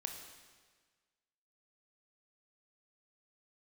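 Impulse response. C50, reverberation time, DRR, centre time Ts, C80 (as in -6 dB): 5.5 dB, 1.5 s, 3.5 dB, 39 ms, 7.0 dB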